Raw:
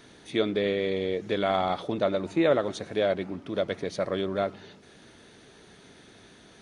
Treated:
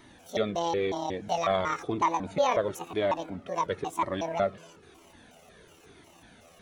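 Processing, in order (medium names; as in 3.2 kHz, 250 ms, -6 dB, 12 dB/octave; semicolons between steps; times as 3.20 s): pitch shift switched off and on +9 st, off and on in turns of 183 ms; peaking EQ 5 kHz -6 dB 1.1 oct; Shepard-style flanger falling 0.99 Hz; trim +4 dB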